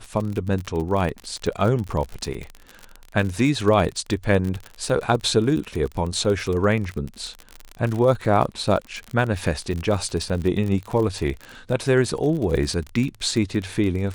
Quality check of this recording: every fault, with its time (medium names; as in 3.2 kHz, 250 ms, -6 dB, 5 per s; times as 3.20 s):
crackle 42 per s -26 dBFS